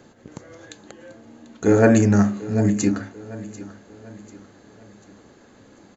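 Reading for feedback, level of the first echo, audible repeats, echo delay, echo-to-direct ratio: 43%, -17.0 dB, 3, 742 ms, -16.0 dB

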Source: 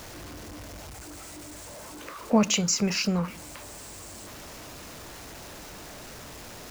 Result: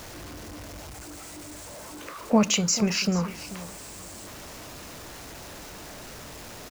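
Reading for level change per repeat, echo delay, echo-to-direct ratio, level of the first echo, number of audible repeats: -14.5 dB, 438 ms, -15.5 dB, -15.5 dB, 2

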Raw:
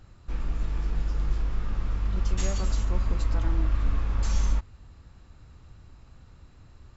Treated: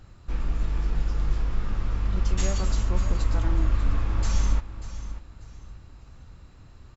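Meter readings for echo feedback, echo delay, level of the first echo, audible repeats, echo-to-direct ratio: 27%, 590 ms, -13.0 dB, 2, -12.5 dB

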